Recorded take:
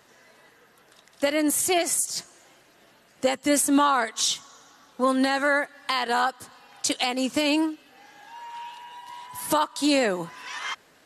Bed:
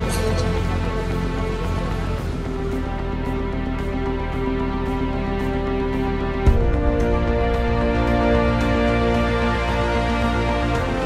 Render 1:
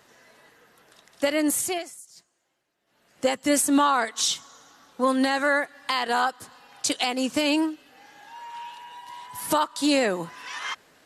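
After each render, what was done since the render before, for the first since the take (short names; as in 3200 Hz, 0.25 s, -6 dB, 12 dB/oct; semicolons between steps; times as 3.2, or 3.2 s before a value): 1.51–3.26 dip -20 dB, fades 0.41 s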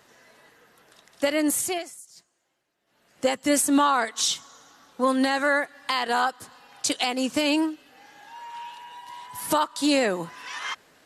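nothing audible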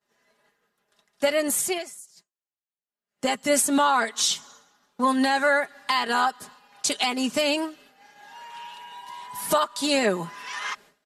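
expander -45 dBFS; comb 4.9 ms, depth 59%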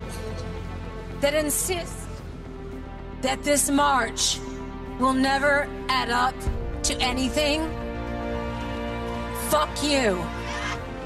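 add bed -12 dB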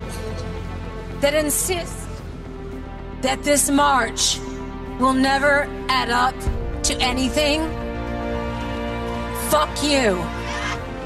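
gain +4 dB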